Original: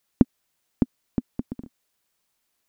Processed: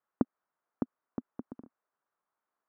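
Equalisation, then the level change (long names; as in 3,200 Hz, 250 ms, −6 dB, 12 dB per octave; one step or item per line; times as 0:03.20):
high-pass filter 960 Hz 6 dB per octave
Chebyshev low-pass filter 1,300 Hz, order 3
+1.5 dB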